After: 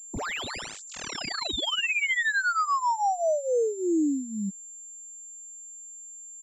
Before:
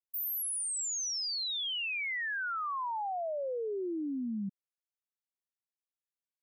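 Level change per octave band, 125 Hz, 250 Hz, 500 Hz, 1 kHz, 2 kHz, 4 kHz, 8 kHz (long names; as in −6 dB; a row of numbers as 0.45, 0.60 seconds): can't be measured, +8.5 dB, +9.5 dB, +9.5 dB, +9.0 dB, +4.0 dB, −0.5 dB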